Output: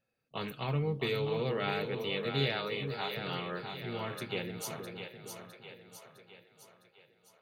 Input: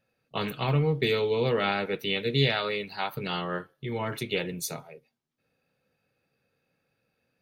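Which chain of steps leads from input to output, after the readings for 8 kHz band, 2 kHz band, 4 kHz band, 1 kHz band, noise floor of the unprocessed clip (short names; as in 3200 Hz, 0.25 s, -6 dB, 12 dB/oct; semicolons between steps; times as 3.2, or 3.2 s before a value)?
-6.5 dB, -6.5 dB, -6.5 dB, -6.5 dB, -78 dBFS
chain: split-band echo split 440 Hz, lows 0.46 s, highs 0.658 s, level -6.5 dB; gain -7.5 dB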